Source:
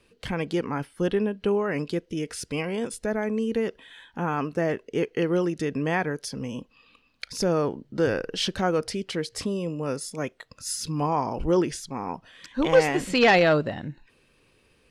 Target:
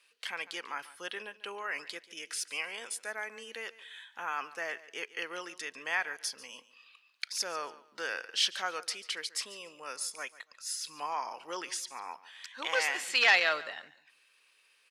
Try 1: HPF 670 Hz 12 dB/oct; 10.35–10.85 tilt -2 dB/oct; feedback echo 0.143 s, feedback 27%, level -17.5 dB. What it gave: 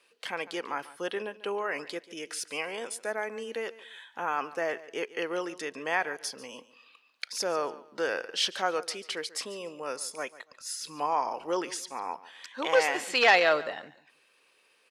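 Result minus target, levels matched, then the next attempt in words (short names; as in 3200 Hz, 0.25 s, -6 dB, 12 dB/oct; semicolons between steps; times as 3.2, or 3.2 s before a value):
500 Hz band +8.0 dB
HPF 1400 Hz 12 dB/oct; 10.35–10.85 tilt -2 dB/oct; feedback echo 0.143 s, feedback 27%, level -17.5 dB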